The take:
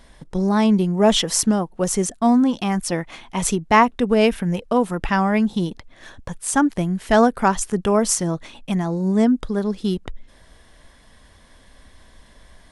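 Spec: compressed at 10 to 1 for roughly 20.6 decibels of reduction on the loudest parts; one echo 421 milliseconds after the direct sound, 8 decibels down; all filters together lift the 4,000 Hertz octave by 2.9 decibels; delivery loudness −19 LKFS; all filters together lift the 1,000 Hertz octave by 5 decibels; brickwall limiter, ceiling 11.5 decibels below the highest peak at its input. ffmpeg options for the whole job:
ffmpeg -i in.wav -af "equalizer=frequency=1000:width_type=o:gain=6,equalizer=frequency=4000:width_type=o:gain=3.5,acompressor=threshold=-27dB:ratio=10,alimiter=limit=-24dB:level=0:latency=1,aecho=1:1:421:0.398,volume=14.5dB" out.wav

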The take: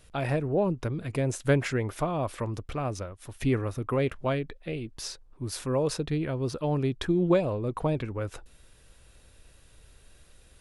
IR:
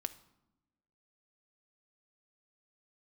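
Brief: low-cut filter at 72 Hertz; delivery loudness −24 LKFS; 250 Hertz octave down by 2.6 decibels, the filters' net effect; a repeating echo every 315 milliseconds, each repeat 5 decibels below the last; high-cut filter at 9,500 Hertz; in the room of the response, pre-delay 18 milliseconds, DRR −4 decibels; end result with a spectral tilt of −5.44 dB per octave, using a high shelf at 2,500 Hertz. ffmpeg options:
-filter_complex "[0:a]highpass=72,lowpass=9500,equalizer=frequency=250:width_type=o:gain=-4,highshelf=frequency=2500:gain=4,aecho=1:1:315|630|945|1260|1575|1890|2205:0.562|0.315|0.176|0.0988|0.0553|0.031|0.0173,asplit=2[link_01][link_02];[1:a]atrim=start_sample=2205,adelay=18[link_03];[link_02][link_03]afir=irnorm=-1:irlink=0,volume=5dB[link_04];[link_01][link_04]amix=inputs=2:normalize=0"

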